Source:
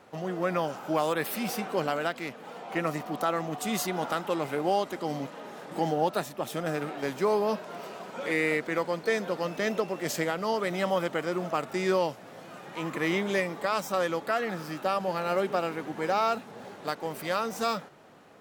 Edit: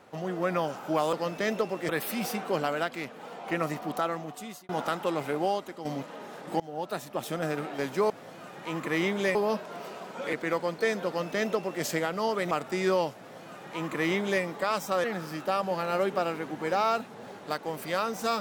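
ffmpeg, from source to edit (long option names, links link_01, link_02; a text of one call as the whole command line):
ffmpeg -i in.wav -filter_complex "[0:a]asplit=11[link_01][link_02][link_03][link_04][link_05][link_06][link_07][link_08][link_09][link_10][link_11];[link_01]atrim=end=1.132[link_12];[link_02]atrim=start=9.318:end=10.082[link_13];[link_03]atrim=start=1.128:end=3.93,asetpts=PTS-STARTPTS,afade=type=out:start_time=2.032:duration=0.77[link_14];[link_04]atrim=start=3.93:end=5.09,asetpts=PTS-STARTPTS,afade=type=in:duration=0.004:curve=hsin,afade=type=out:start_time=0.65:duration=0.51:silence=0.334965[link_15];[link_05]atrim=start=5.09:end=5.84,asetpts=PTS-STARTPTS,afade=type=in:duration=0.004:curve=hsin:silence=0.334965,afade=type=out:start_time=0.746:duration=0.004:curve=hsin:silence=0.0707946[link_16];[link_06]atrim=start=5.84:end=7.342,asetpts=PTS-STARTPTS,afade=type=in:duration=0.57:silence=0.0707946[link_17];[link_07]atrim=start=12.198:end=13.452[link_18];[link_08]atrim=start=7.338:end=8.322[link_19];[link_09]atrim=start=8.578:end=10.762[link_20];[link_10]atrim=start=11.528:end=14.062[link_21];[link_11]atrim=start=14.408[link_22];[link_12][link_13]acrossfade=duration=0.004:curve1=hsin:curve2=hsin[link_23];[link_14][link_15][link_16][link_17]concat=n=4:v=0:a=1[link_24];[link_23][link_24]acrossfade=duration=0.004:curve1=hsin:curve2=hsin[link_25];[link_25][link_18]acrossfade=duration=0.004:curve1=hsin:curve2=hsin[link_26];[link_26][link_19]acrossfade=duration=0.004:curve1=hsin:curve2=hsin[link_27];[link_27][link_20]acrossfade=duration=0.004:curve1=hsin:curve2=hsin[link_28];[link_28][link_21]acrossfade=duration=0.004:curve1=hsin:curve2=hsin[link_29];[link_29][link_22]acrossfade=duration=0.004:curve1=hsin:curve2=hsin" out.wav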